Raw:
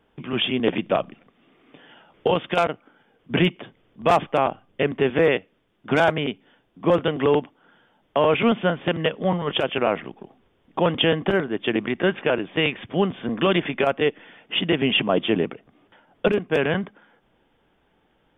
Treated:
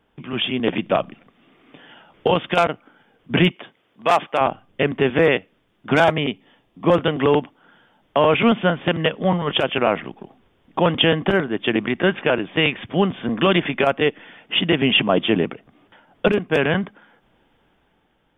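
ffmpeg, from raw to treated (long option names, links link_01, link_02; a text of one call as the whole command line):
ffmpeg -i in.wav -filter_complex "[0:a]asettb=1/sr,asplit=3[link_01][link_02][link_03];[link_01]atrim=end=3.514[link_04];[link_02]atrim=start=3.51:end=4.41,asetpts=PTS-STARTPTS,afade=type=in:duration=0.004:curve=qsin,afade=type=out:start_time=0.896:duration=0.004:curve=qsin,highpass=frequency=560:poles=1[link_05];[link_03]atrim=start=4.406[link_06];[link_04][link_05]acrossfade=duration=0.004:curve1=hsin:curve2=qsin[link_07];[link_07][link_06]acrossfade=duration=0.004:curve1=qsin:curve2=hsin,asettb=1/sr,asplit=3[link_08][link_09][link_10];[link_08]atrim=end=6.044[link_11];[link_09]atrim=start=6.04:end=6.86,asetpts=PTS-STARTPTS,afade=type=in:duration=0.004:curve=qsin,afade=type=out:start_time=0.816:duration=0.004:curve=qsin,asuperstop=centerf=1500:order=4:qfactor=7[link_12];[link_10]atrim=start=6.856[link_13];[link_11][link_12]acrossfade=duration=0.004:curve1=hsin:curve2=qsin[link_14];[link_14][link_13]acrossfade=duration=0.004:curve1=qsin:curve2=hsin,equalizer=frequency=440:width=1.5:gain=-2.5,dynaudnorm=framelen=130:gausssize=11:maxgain=4.5dB" out.wav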